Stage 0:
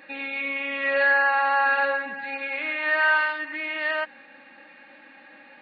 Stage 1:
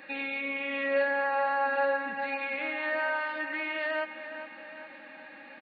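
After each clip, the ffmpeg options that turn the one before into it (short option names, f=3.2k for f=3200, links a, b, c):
-filter_complex "[0:a]acrossover=split=710[a][b];[b]acompressor=threshold=-32dB:ratio=6[c];[a][c]amix=inputs=2:normalize=0,asplit=2[d][e];[e]adelay=412,lowpass=f=3.3k:p=1,volume=-10dB,asplit=2[f][g];[g]adelay=412,lowpass=f=3.3k:p=1,volume=0.55,asplit=2[h][i];[i]adelay=412,lowpass=f=3.3k:p=1,volume=0.55,asplit=2[j][k];[k]adelay=412,lowpass=f=3.3k:p=1,volume=0.55,asplit=2[l][m];[m]adelay=412,lowpass=f=3.3k:p=1,volume=0.55,asplit=2[n][o];[o]adelay=412,lowpass=f=3.3k:p=1,volume=0.55[p];[d][f][h][j][l][n][p]amix=inputs=7:normalize=0"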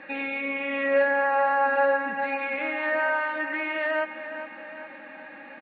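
-af "lowpass=2.4k,volume=5.5dB"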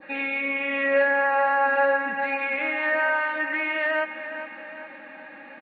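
-af "adynamicequalizer=threshold=0.01:dfrequency=2200:dqfactor=1:tfrequency=2200:tqfactor=1:attack=5:release=100:ratio=0.375:range=2:mode=boostabove:tftype=bell"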